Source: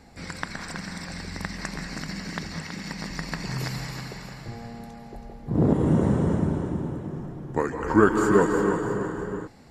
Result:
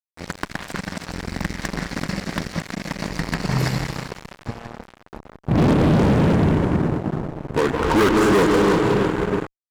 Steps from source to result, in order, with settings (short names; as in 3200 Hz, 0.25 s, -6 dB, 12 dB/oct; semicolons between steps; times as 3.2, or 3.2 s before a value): high shelf 2200 Hz -8.5 dB; fuzz box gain 27 dB, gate -36 dBFS